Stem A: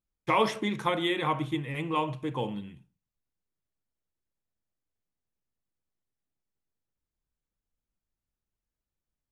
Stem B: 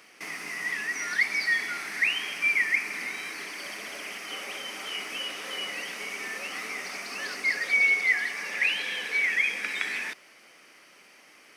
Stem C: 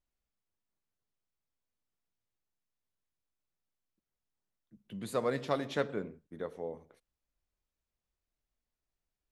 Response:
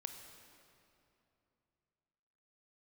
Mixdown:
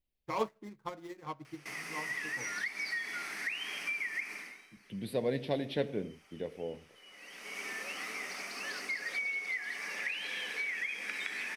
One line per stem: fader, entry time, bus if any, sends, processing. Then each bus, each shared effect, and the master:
−5.5 dB, 0.00 s, no send, running median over 15 samples; expander for the loud parts 2.5 to 1, over −38 dBFS
−5.0 dB, 1.45 s, no send, downward compressor 12 to 1, threshold −28 dBFS, peak gain reduction 10.5 dB; automatic ducking −21 dB, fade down 0.40 s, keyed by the third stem
+2.0 dB, 0.00 s, no send, phaser with its sweep stopped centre 3,000 Hz, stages 4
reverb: not used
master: no processing

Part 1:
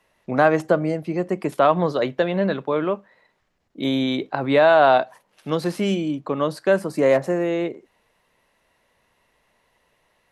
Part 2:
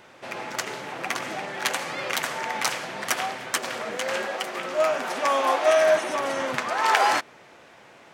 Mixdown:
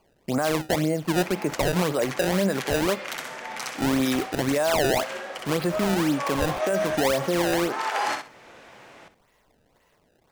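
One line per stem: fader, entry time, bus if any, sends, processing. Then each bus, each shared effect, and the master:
+1.5 dB, 0.00 s, no send, no echo send, sample-and-hold swept by an LFO 23×, swing 160% 1.9 Hz
+2.0 dB, 0.95 s, no send, echo send −12.5 dB, automatic ducking −10 dB, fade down 1.95 s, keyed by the first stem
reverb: not used
echo: repeating echo 63 ms, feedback 21%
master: brickwall limiter −15.5 dBFS, peak gain reduction 12.5 dB

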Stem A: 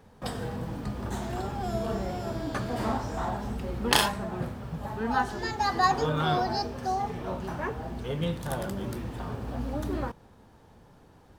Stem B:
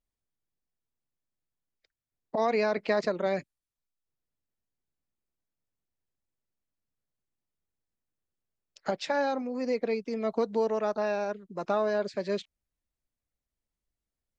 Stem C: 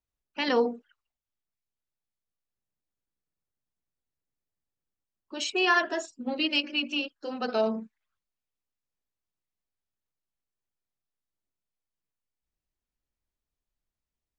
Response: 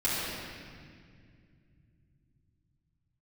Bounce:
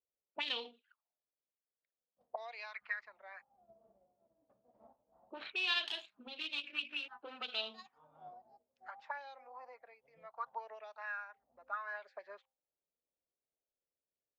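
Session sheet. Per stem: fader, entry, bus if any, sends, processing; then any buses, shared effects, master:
−11.0 dB, 1.95 s, no send, graphic EQ with 15 bands 100 Hz −8 dB, 400 Hz −11 dB, 1,600 Hz −6 dB; expander for the loud parts 2.5 to 1, over −40 dBFS
−3.0 dB, 0.00 s, no send, hum removal 264 Hz, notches 3; auto-filter high-pass sine 0.72 Hz 670–2,100 Hz; two-band tremolo in antiphase 1.3 Hz, depth 50%, crossover 660 Hz
+0.5 dB, 0.00 s, no send, running median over 15 samples; low-pass that shuts in the quiet parts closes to 950 Hz, open at −30 dBFS; flat-topped bell 3,200 Hz +13.5 dB 1 octave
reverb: not used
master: envelope filter 520–3,300 Hz, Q 2.9, up, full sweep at −27 dBFS; spectral tilt −1.5 dB per octave

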